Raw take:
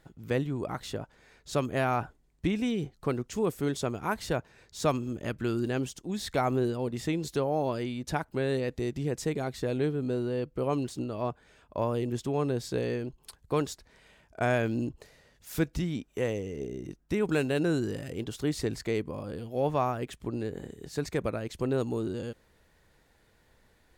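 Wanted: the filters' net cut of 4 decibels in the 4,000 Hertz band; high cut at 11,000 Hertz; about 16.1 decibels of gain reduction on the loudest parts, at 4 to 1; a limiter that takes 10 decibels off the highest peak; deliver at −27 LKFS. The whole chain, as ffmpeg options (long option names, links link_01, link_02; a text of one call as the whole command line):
ffmpeg -i in.wav -af "lowpass=11000,equalizer=frequency=4000:width_type=o:gain=-5,acompressor=threshold=-42dB:ratio=4,volume=20.5dB,alimiter=limit=-17dB:level=0:latency=1" out.wav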